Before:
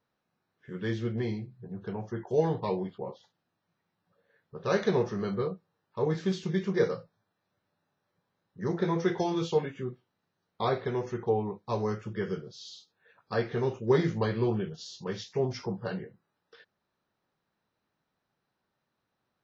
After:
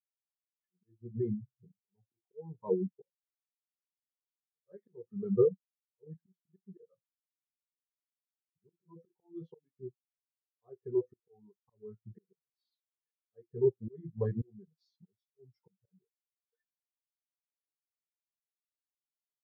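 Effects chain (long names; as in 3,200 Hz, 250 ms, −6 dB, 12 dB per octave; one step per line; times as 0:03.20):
reverb reduction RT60 0.53 s
volume swells 525 ms
every bin expanded away from the loudest bin 2.5 to 1
level +6 dB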